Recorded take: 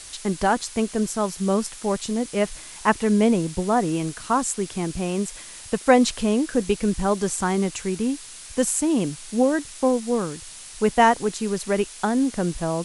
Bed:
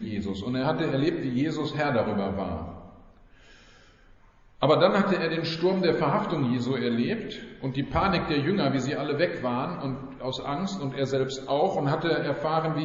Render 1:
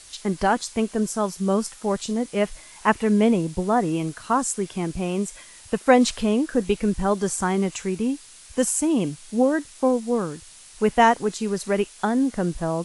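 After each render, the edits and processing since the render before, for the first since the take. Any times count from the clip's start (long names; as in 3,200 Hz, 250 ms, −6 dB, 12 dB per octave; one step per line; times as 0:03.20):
noise reduction from a noise print 6 dB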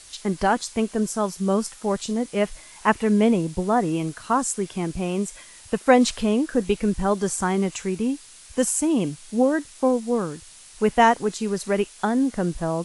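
no processing that can be heard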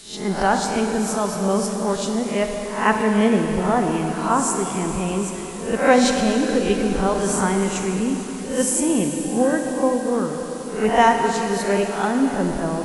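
peak hold with a rise ahead of every peak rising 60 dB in 0.44 s
dense smooth reverb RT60 4.2 s, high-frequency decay 1×, pre-delay 0 ms, DRR 3 dB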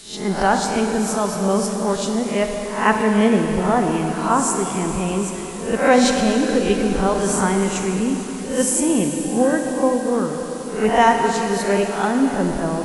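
level +1.5 dB
brickwall limiter −3 dBFS, peak gain reduction 2 dB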